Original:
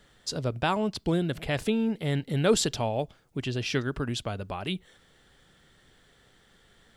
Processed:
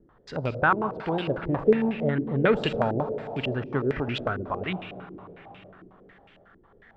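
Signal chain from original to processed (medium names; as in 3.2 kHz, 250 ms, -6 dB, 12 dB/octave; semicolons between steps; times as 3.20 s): 0.70–1.28 s: tilt EQ +2.5 dB/octave; reverberation RT60 4.5 s, pre-delay 32 ms, DRR 8.5 dB; step-sequenced low-pass 11 Hz 340–2600 Hz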